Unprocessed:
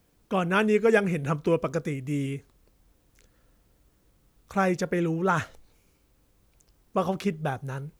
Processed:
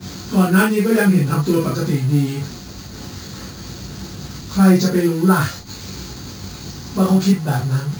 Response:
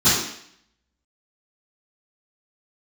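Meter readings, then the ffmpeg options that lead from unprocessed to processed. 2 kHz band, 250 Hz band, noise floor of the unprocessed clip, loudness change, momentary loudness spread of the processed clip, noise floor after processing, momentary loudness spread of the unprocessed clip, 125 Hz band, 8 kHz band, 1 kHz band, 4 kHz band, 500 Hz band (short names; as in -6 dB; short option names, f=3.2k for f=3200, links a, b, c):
+6.5 dB, +13.5 dB, -66 dBFS, +10.0 dB, 18 LU, -34 dBFS, 10 LU, +14.0 dB, +16.5 dB, +5.0 dB, +13.0 dB, +4.5 dB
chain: -filter_complex "[0:a]aeval=exprs='val(0)+0.5*0.0224*sgn(val(0))':c=same,equalizer=f=4.5k:t=o:w=0.3:g=12.5[a];[1:a]atrim=start_sample=2205,atrim=end_sample=3969[b];[a][b]afir=irnorm=-1:irlink=0,acrusher=samples=4:mix=1:aa=0.000001,volume=-15dB"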